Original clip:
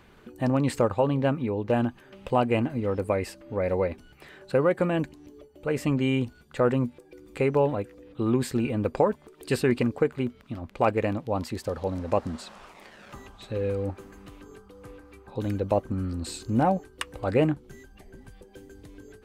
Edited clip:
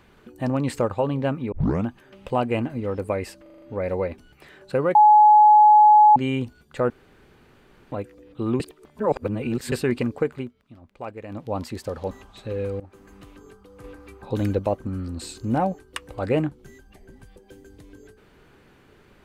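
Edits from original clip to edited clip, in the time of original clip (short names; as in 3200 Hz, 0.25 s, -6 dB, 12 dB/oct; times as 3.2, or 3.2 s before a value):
1.52 tape start 0.34 s
3.42 stutter 0.04 s, 6 plays
4.75–5.96 bleep 846 Hz -9 dBFS
6.7–7.72 room tone
8.4–9.52 reverse
10.16–11.22 dip -12 dB, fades 0.14 s
11.91–13.16 cut
13.85–14.19 fade in, from -18 dB
14.89–15.64 gain +5 dB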